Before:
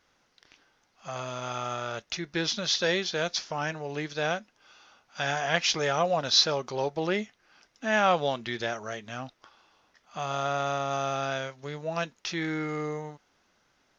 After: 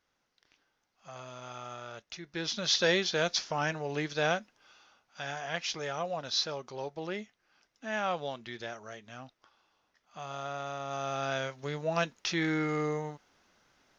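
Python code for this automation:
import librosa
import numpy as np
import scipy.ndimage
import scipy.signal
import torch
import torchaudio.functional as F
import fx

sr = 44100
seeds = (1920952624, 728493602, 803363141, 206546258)

y = fx.gain(x, sr, db=fx.line((2.23, -10.0), (2.75, 0.0), (4.38, 0.0), (5.23, -9.0), (10.75, -9.0), (11.54, 1.0)))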